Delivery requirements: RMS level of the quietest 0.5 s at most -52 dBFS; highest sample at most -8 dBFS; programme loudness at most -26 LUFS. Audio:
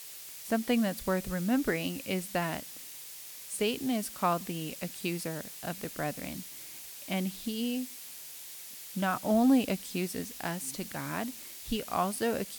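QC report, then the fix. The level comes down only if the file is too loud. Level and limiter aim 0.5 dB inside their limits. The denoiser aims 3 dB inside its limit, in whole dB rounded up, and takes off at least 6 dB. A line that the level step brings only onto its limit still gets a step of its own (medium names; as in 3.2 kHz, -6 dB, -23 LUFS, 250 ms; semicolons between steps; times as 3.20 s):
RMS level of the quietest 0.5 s -46 dBFS: fail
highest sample -14.5 dBFS: pass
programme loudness -33.0 LUFS: pass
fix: noise reduction 9 dB, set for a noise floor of -46 dBFS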